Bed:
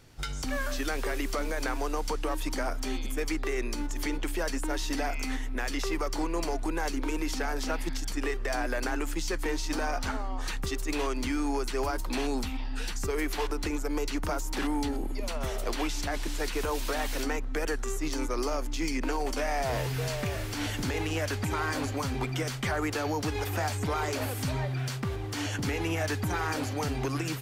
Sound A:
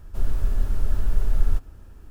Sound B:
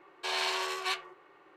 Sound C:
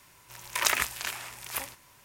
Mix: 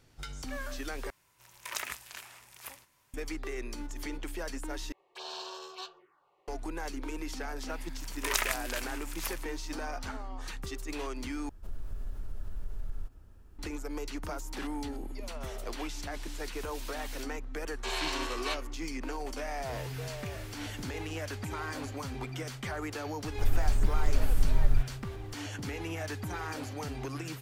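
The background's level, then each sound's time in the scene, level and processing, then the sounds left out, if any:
bed -7 dB
1.10 s: replace with C -11.5 dB
4.92 s: replace with B -7 dB + touch-sensitive phaser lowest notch 210 Hz, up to 2.1 kHz, full sweep at -33 dBFS
7.69 s: add C -4.5 dB
11.49 s: replace with A -10 dB + compression 2:1, threshold -26 dBFS
17.60 s: add B -3 dB
23.24 s: add A -4 dB

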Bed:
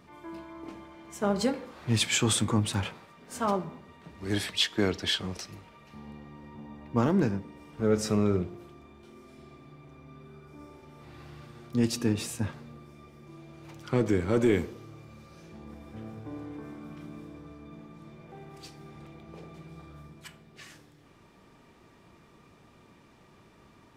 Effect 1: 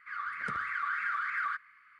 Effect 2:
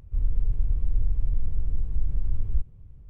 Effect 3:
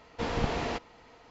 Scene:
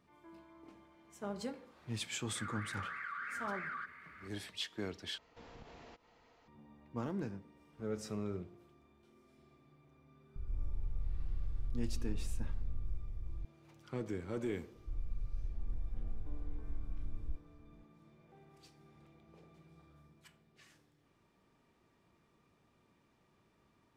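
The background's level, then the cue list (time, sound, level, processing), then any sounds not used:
bed -14.5 dB
2.29 s: add 1 -10.5 dB + level flattener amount 50%
5.18 s: replace with 3 -10.5 dB + compression 2:1, threshold -52 dBFS
10.36 s: add 2 -18 dB + spectral levelling over time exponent 0.2
14.74 s: add 2 -15.5 dB

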